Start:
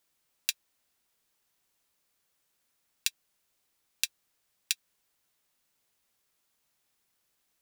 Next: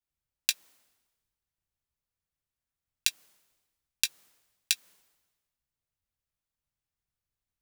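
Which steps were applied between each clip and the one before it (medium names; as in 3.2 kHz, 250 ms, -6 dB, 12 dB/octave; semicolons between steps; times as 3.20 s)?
compressor with a negative ratio -32 dBFS, ratio -1; three bands expanded up and down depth 100%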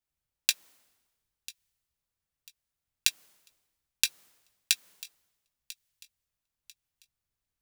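feedback echo behind a high-pass 994 ms, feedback 32%, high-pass 2.2 kHz, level -18 dB; trim +1.5 dB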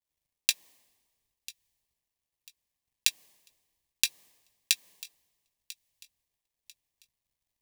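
companded quantiser 8-bit; Butterworth band-stop 1.4 kHz, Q 3.1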